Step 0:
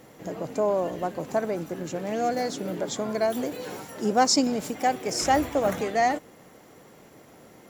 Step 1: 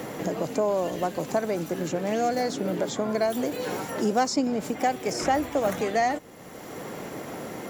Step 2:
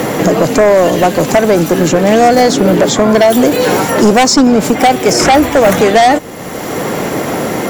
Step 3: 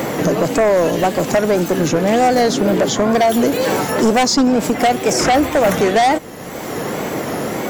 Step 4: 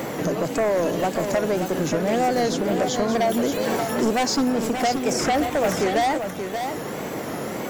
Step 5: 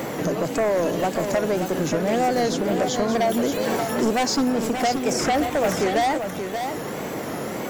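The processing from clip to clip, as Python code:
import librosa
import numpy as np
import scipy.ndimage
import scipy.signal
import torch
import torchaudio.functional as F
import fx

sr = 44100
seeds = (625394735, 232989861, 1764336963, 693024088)

y1 = fx.band_squash(x, sr, depth_pct=70)
y2 = fx.fold_sine(y1, sr, drive_db=8, ceiling_db=-11.0)
y2 = y2 * librosa.db_to_amplitude(8.5)
y3 = fx.wow_flutter(y2, sr, seeds[0], rate_hz=2.1, depth_cents=100.0)
y3 = y3 * librosa.db_to_amplitude(-6.0)
y4 = y3 + 10.0 ** (-7.0 / 20.0) * np.pad(y3, (int(579 * sr / 1000.0), 0))[:len(y3)]
y4 = y4 * librosa.db_to_amplitude(-8.0)
y5 = fx.recorder_agc(y4, sr, target_db=-23.0, rise_db_per_s=77.0, max_gain_db=30)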